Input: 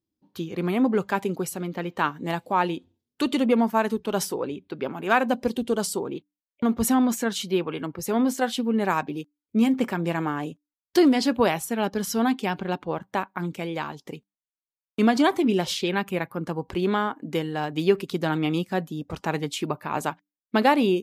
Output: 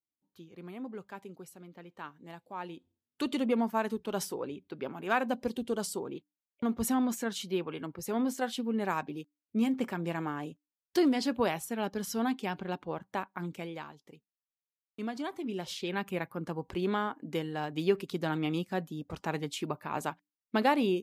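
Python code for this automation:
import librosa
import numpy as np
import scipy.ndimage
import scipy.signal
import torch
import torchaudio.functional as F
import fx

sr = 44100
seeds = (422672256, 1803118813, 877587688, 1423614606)

y = fx.gain(x, sr, db=fx.line((2.46, -19.5), (3.22, -8.0), (13.6, -8.0), (14.05, -17.0), (15.29, -17.0), (16.07, -7.0)))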